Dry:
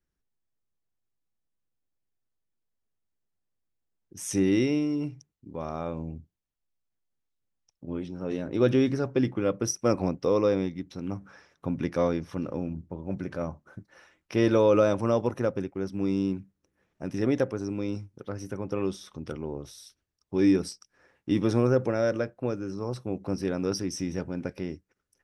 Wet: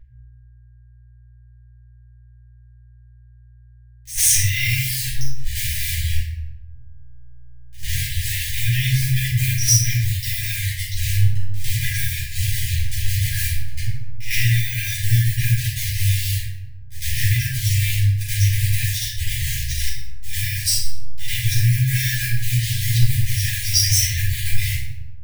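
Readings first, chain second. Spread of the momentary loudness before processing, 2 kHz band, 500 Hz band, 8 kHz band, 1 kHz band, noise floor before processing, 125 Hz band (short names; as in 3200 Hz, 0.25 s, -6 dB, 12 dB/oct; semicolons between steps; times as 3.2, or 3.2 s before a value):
15 LU, +15.5 dB, under -40 dB, +20.0 dB, under -40 dB, -81 dBFS, +15.5 dB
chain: level-crossing sampler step -37.5 dBFS; reverb removal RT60 1.3 s; high shelf 3800 Hz +12 dB; pre-echo 0.102 s -18 dB; dynamic EQ 5700 Hz, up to -4 dB, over -52 dBFS, Q 0.9; compressor 6:1, threshold -28 dBFS, peak gain reduction 11 dB; sample leveller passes 2; buzz 60 Hz, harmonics 27, -56 dBFS -8 dB/oct; shoebox room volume 240 m³, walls mixed, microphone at 4.9 m; FFT band-reject 130–1600 Hz; gain +1.5 dB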